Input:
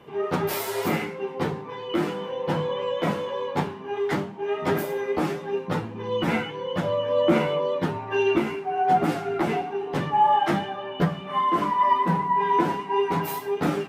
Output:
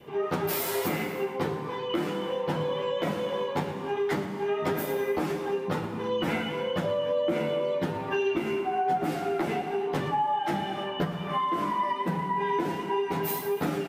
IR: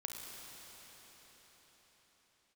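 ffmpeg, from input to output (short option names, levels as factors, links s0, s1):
-filter_complex "[0:a]highshelf=f=12000:g=7.5,bandreject=f=56.5:t=h:w=4,bandreject=f=113:t=h:w=4,bandreject=f=169.5:t=h:w=4,bandreject=f=226:t=h:w=4,asplit=2[s0][s1];[1:a]atrim=start_sample=2205,afade=t=out:st=0.39:d=0.01,atrim=end_sample=17640[s2];[s1][s2]afir=irnorm=-1:irlink=0,volume=0.841[s3];[s0][s3]amix=inputs=2:normalize=0,adynamicequalizer=threshold=0.0251:dfrequency=1100:dqfactor=1.9:tfrequency=1100:tqfactor=1.9:attack=5:release=100:ratio=0.375:range=3.5:mode=cutabove:tftype=bell,acompressor=threshold=0.0794:ratio=5,aecho=1:1:114:0.188,volume=0.708"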